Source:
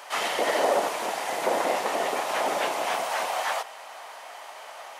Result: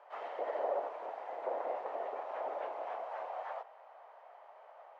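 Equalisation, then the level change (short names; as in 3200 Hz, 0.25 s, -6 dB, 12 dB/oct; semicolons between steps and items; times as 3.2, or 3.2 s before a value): ladder band-pass 680 Hz, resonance 30%; -2.0 dB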